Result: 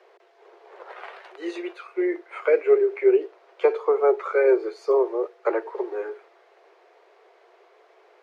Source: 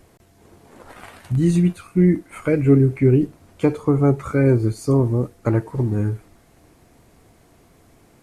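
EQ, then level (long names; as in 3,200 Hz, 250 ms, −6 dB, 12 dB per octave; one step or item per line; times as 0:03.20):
Butterworth high-pass 370 Hz 96 dB per octave
high-frequency loss of the air 250 metres
+3.5 dB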